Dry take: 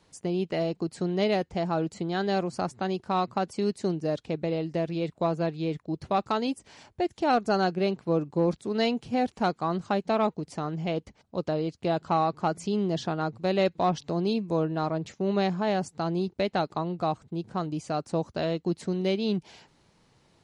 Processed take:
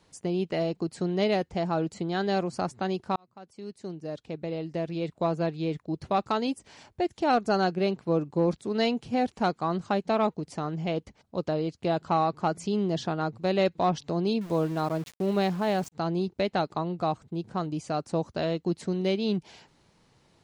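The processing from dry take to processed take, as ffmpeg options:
-filter_complex "[0:a]asettb=1/sr,asplit=3[a][b][c];[a]atrim=end=14.414[d];[b]atrim=start=14.41:end=15.92,asetpts=PTS-STARTPTS,afade=t=in:d=0.004:c=qsin,afade=t=out:st=1.506:d=0.004:c=qsin,aeval=exprs='val(0)*gte(abs(val(0)),0.00891)':c=same[e];[c]atrim=start=15.916[f];[d][e]acrossfade=d=0.004:c1=hsin:c2=qsin[g];[g][f]acrossfade=d=0.004:c1=qsin:c2=hsin,asplit=2[h][i];[h]atrim=end=3.16,asetpts=PTS-STARTPTS,afade=t=out:st=3.156:d=0.004:c=hsin[j];[i]atrim=start=3.16,asetpts=PTS-STARTPTS,afade=t=in:d=2.19[k];[j][k]concat=n=2:v=0:a=1"

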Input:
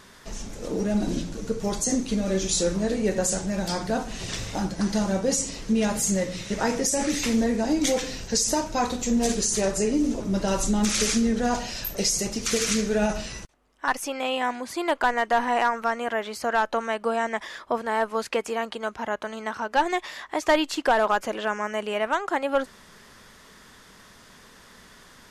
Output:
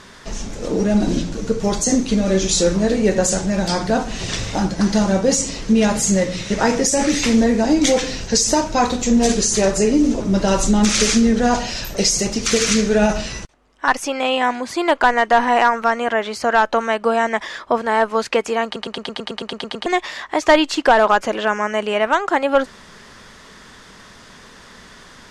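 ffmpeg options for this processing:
-filter_complex "[0:a]asplit=12[a][b][c][d][e][f][g][h][i][j][k][l];[a]atrim=end=18.762[m];[b]atrim=start=18.648:end=18.762[n];[c]atrim=start=18.648:end=18.762[o];[d]atrim=start=18.648:end=18.762[p];[e]atrim=start=18.648:end=18.762[q];[f]atrim=start=18.648:end=18.762[r];[g]atrim=start=18.648:end=18.762[s];[h]atrim=start=18.648:end=18.762[t];[i]atrim=start=18.648:end=18.762[u];[j]atrim=start=18.648:end=18.762[v];[k]atrim=start=18.648:end=18.762[w];[l]atrim=start=19.858[x];[m][n]acrossfade=d=0.004:c1=hsin:c2=hsin[y];[y][o]acrossfade=d=0.004:c1=hsin:c2=hsin[z];[z][p]acrossfade=d=0.004:c1=hsin:c2=hsin[aa];[aa][q]acrossfade=d=0.004:c1=hsin:c2=hsin[ab];[ab][r]acrossfade=d=0.004:c1=hsin:c2=hsin[ac];[ac][s]acrossfade=d=0.004:c1=hsin:c2=hsin[ad];[ad][t]acrossfade=d=0.004:c1=hsin:c2=hsin[ae];[ae][u]acrossfade=d=0.004:c1=hsin:c2=hsin[af];[af][v]acrossfade=d=0.004:c1=hsin:c2=hsin[ag];[ag][w]acrossfade=d=0.004:c1=hsin:c2=hsin[ah];[ah][x]acrossfade=d=0.004:c1=hsin:c2=hsin,lowpass=7.8k,volume=8dB"

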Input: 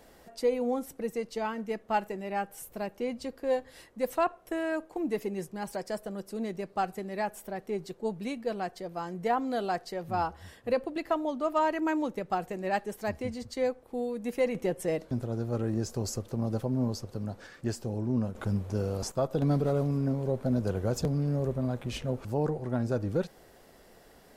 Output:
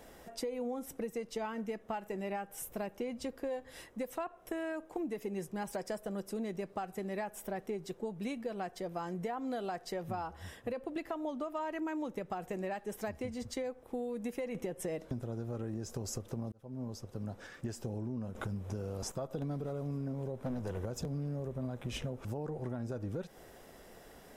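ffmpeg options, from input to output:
-filter_complex "[0:a]asettb=1/sr,asplit=3[a][b][c];[a]atrim=end=20.354[d];[b]atrim=start=20.35:end=20.85,asetpts=PTS-STARTPTS,afade=t=in:d=0.004:c=qsin,afade=t=out:st=0.496:d=0.004:c=qsin,aeval=exprs='clip(val(0),-1,0.0335)':c=same[e];[c]atrim=start=20.846[f];[d][e]acrossfade=d=0.004:c1=hsin:c2=qsin[g];[g][f]acrossfade=d=0.004:c1=qsin:c2=hsin,asplit=2[h][i];[h]atrim=end=16.52,asetpts=PTS-STARTPTS,afade=t=out:st=16.516:d=0.004:c=hsin[j];[i]atrim=start=16.52,asetpts=PTS-STARTPTS,afade=t=in:d=1.27[k];[j][k]concat=n=2:v=0:a=1,bandreject=f=4.4k:w=7.8,alimiter=level_in=0.5dB:limit=-24dB:level=0:latency=1:release=228,volume=-0.5dB,acompressor=threshold=-36dB:ratio=6,volume=1.5dB"

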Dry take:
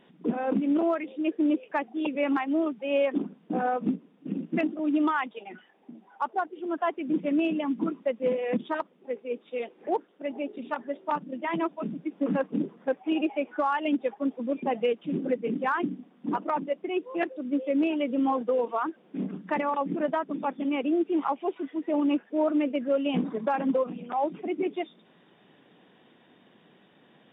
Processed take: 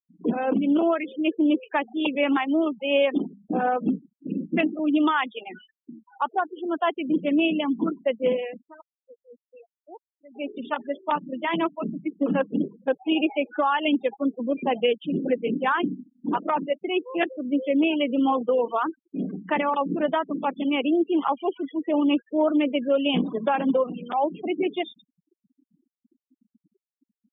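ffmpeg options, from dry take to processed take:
-filter_complex "[0:a]asplit=3[a][b][c];[a]atrim=end=8.55,asetpts=PTS-STARTPTS,afade=t=out:st=8.36:d=0.19:silence=0.0944061[d];[b]atrim=start=8.55:end=10.3,asetpts=PTS-STARTPTS,volume=-20.5dB[e];[c]atrim=start=10.3,asetpts=PTS-STARTPTS,afade=t=in:d=0.19:silence=0.0944061[f];[d][e][f]concat=n=3:v=0:a=1,equalizer=f=3.3k:w=2.1:g=10,bandreject=f=50:t=h:w=6,bandreject=f=100:t=h:w=6,bandreject=f=150:t=h:w=6,bandreject=f=200:t=h:w=6,afftfilt=real='re*gte(hypot(re,im),0.01)':imag='im*gte(hypot(re,im),0.01)':win_size=1024:overlap=0.75,volume=3.5dB"

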